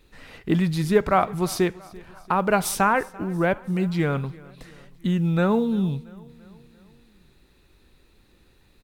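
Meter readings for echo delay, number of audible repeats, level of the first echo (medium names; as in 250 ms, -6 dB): 340 ms, 3, -22.5 dB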